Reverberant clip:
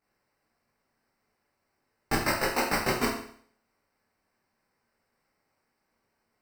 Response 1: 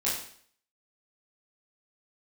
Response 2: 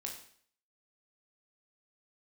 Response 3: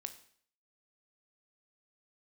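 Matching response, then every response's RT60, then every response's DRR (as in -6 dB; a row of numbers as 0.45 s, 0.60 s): 1; 0.55 s, 0.55 s, 0.55 s; -8.5 dB, 0.0 dB, 8.5 dB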